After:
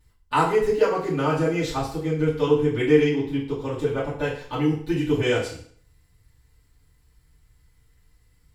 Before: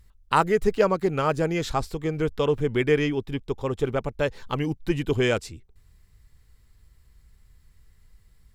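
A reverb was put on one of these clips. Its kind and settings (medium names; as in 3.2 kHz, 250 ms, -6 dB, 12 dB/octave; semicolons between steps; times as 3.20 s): FDN reverb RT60 0.54 s, low-frequency decay 0.85×, high-frequency decay 0.95×, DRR -9.5 dB; trim -9.5 dB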